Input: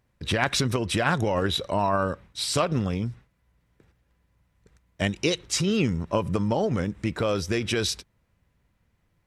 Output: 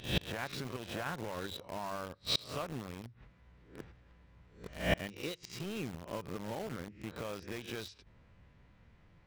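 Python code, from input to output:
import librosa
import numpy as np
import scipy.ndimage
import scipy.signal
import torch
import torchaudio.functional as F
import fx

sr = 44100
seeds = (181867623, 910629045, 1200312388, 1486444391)

p1 = fx.spec_swells(x, sr, rise_s=0.46)
p2 = scipy.signal.sosfilt(scipy.signal.butter(2, 4100.0, 'lowpass', fs=sr, output='sos'), p1)
p3 = fx.hum_notches(p2, sr, base_hz=50, count=2)
p4 = fx.gate_flip(p3, sr, shuts_db=-27.0, range_db=-27)
p5 = fx.quant_dither(p4, sr, seeds[0], bits=8, dither='none')
p6 = p4 + F.gain(torch.from_numpy(p5), -3.0).numpy()
y = F.gain(torch.from_numpy(p6), 5.5).numpy()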